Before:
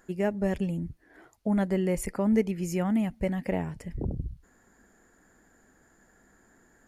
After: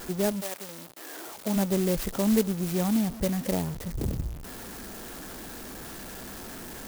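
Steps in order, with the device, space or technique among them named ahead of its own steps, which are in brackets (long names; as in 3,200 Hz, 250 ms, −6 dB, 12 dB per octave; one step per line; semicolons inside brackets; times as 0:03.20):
early CD player with a faulty converter (converter with a step at zero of −35 dBFS; converter with an unsteady clock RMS 0.11 ms)
0:00.40–0:01.55: high-pass filter 880 Hz → 210 Hz 12 dB per octave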